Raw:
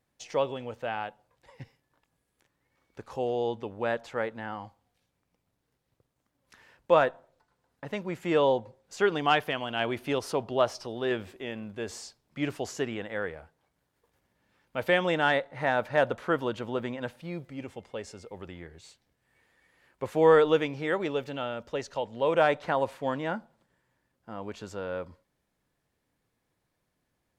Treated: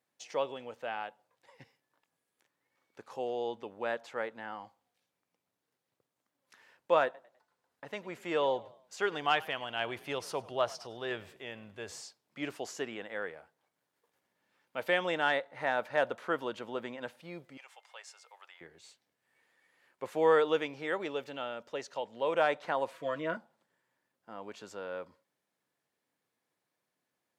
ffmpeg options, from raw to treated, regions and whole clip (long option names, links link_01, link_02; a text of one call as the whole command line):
ffmpeg -i in.wav -filter_complex "[0:a]asettb=1/sr,asplit=3[link_01][link_02][link_03];[link_01]atrim=end=7.044[link_04];[link_02]atrim=start=7.04:end=12.01,asetpts=PTS-STARTPTS,afade=type=in:duration=0.004:curve=qsin,afade=type=out:start_time=4.966:duration=0.004:curve=qsin,asubboost=boost=9:cutoff=86,asplit=4[link_05][link_06][link_07][link_08];[link_06]adelay=101,afreqshift=41,volume=-21dB[link_09];[link_07]adelay=202,afreqshift=82,volume=-29.2dB[link_10];[link_08]adelay=303,afreqshift=123,volume=-37.4dB[link_11];[link_05][link_09][link_10][link_11]amix=inputs=4:normalize=0,atrim=end_sample=219177[link_12];[link_03]atrim=start=12.006[link_13];[link_04][link_12]acrossfade=duration=0.004:curve1=hsin:curve2=qsin[link_14];[link_14][link_13]acrossfade=duration=0.004:curve1=qsin:curve2=hsin,asettb=1/sr,asplit=3[link_15][link_16][link_17];[link_15]atrim=end=17.574[link_18];[link_16]atrim=start=17.57:end=18.61,asetpts=PTS-STARTPTS,afade=type=in:duration=0.004:curve=qsin,afade=type=out:start_time=1.036:duration=0.004:curve=qsin,highpass=frequency=800:width=0.5412,highpass=frequency=800:width=1.3066,acompressor=mode=upward:threshold=-50dB:ratio=2.5:attack=3.2:release=140:knee=2.83:detection=peak[link_19];[link_17]atrim=start=18.606[link_20];[link_18][link_19]acrossfade=duration=0.004:curve1=hsin:curve2=qsin[link_21];[link_21][link_20]acrossfade=duration=0.004:curve1=qsin:curve2=hsin,asettb=1/sr,asplit=3[link_22][link_23][link_24];[link_22]atrim=end=22.924[link_25];[link_23]atrim=start=22.92:end=23.37,asetpts=PTS-STARTPTS,afade=type=in:duration=0.004:curve=qsin,afade=type=out:start_time=0.446:duration=0.004:curve=qsin,acrossover=split=3200[link_26][link_27];[link_27]acompressor=threshold=-56dB:ratio=4:attack=1:release=60[link_28];[link_26][link_28]amix=inputs=2:normalize=0,asuperstop=centerf=840:order=12:qfactor=4.2,aecho=1:1:6.1:0.72,atrim=end_sample=19845[link_29];[link_24]atrim=start=23.366[link_30];[link_25][link_29]acrossfade=duration=0.004:curve1=hsin:curve2=qsin[link_31];[link_31][link_30]acrossfade=duration=0.004:curve1=qsin:curve2=hsin,highpass=140,lowshelf=frequency=260:gain=-9.5,volume=-3.5dB" out.wav